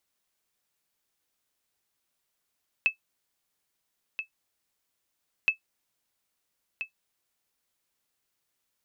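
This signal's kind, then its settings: sonar ping 2610 Hz, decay 0.11 s, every 2.62 s, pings 2, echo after 1.33 s, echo -10.5 dB -13.5 dBFS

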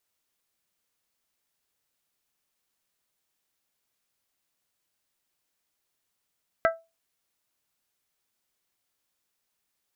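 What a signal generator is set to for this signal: glass hit bell, lowest mode 659 Hz, modes 4, decay 0.25 s, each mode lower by 3 dB, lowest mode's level -16.5 dB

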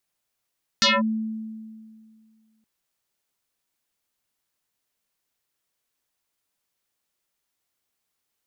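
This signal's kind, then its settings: FM tone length 1.82 s, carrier 220 Hz, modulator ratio 3.56, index 7.3, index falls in 0.20 s linear, decay 2.13 s, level -14 dB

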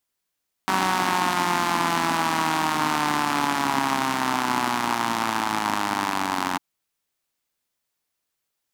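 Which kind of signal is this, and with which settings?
four-cylinder engine model, changing speed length 5.90 s, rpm 5700, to 2700, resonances 270/900 Hz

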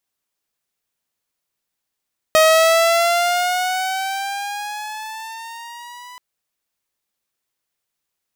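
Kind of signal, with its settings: gliding synth tone saw, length 3.83 s, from 628 Hz, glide +8 st, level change -27 dB, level -6.5 dB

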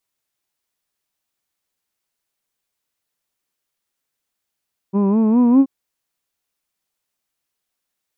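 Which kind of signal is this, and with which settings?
formant vowel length 0.73 s, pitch 190 Hz, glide +6 st, vibrato 4.9 Hz, vibrato depth 0.8 st, F1 300 Hz, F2 1000 Hz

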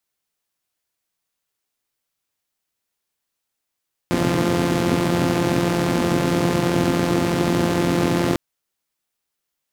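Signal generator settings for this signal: four-cylinder engine model, steady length 4.25 s, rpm 5200, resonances 140/250 Hz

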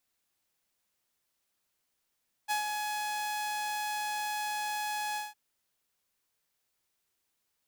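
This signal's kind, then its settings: ADSR saw 842 Hz, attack 31 ms, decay 0.119 s, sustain -5 dB, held 2.68 s, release 0.179 s -24.5 dBFS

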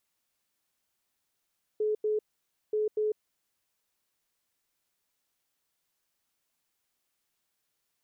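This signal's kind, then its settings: beep pattern sine 427 Hz, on 0.15 s, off 0.09 s, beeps 2, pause 0.54 s, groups 2, -25 dBFS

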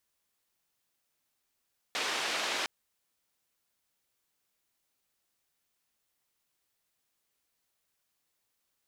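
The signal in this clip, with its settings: noise band 370–3900 Hz, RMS -33 dBFS 0.71 s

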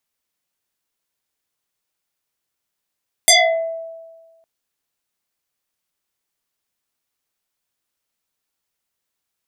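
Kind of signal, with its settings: FM tone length 1.16 s, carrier 657 Hz, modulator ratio 2.09, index 8.3, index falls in 0.53 s exponential, decay 1.45 s, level -6 dB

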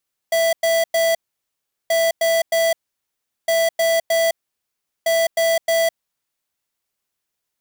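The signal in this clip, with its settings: beep pattern square 661 Hz, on 0.21 s, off 0.10 s, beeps 3, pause 0.75 s, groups 4, -17 dBFS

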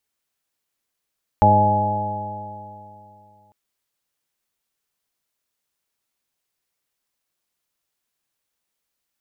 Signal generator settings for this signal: stretched partials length 2.10 s, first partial 102 Hz, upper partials -3.5/-11.5/-13/-9/-2/-12/5.5 dB, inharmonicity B 0.00099, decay 2.82 s, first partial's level -16.5 dB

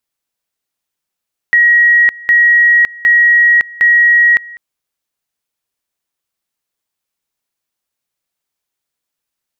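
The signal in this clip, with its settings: two-level tone 1900 Hz -5 dBFS, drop 23 dB, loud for 0.56 s, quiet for 0.20 s, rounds 4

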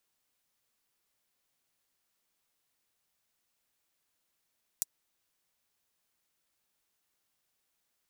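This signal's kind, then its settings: closed hi-hat, high-pass 6700 Hz, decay 0.03 s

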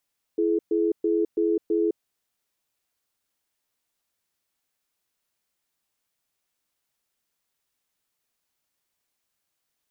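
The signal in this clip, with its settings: cadence 334 Hz, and 424 Hz, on 0.21 s, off 0.12 s, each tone -22.5 dBFS 1.63 s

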